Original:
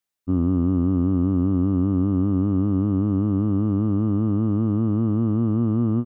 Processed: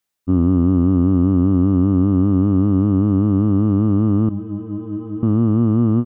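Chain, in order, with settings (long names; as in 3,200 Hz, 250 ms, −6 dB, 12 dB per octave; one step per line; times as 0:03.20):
0:04.29–0:05.23: stiff-string resonator 93 Hz, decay 0.51 s, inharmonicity 0.03
level +5.5 dB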